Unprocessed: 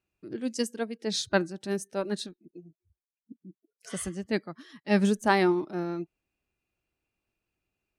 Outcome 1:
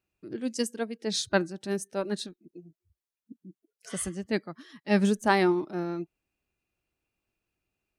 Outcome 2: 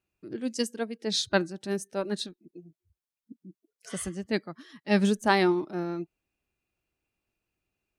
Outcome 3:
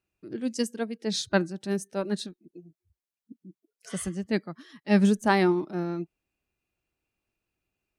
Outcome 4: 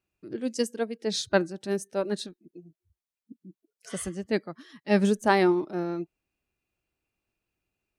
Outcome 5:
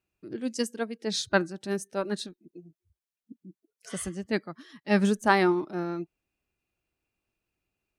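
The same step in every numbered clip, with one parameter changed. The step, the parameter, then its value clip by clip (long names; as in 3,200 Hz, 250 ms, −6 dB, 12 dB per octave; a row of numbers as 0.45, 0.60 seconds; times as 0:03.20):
dynamic equaliser, frequency: 9,300, 3,700, 180, 500, 1,300 Hertz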